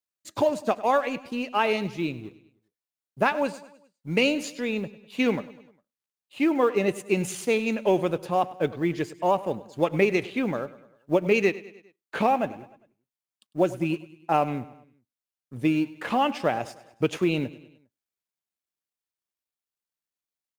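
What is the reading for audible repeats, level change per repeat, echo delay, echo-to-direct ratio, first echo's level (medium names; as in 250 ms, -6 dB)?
3, -5.5 dB, 101 ms, -16.5 dB, -18.0 dB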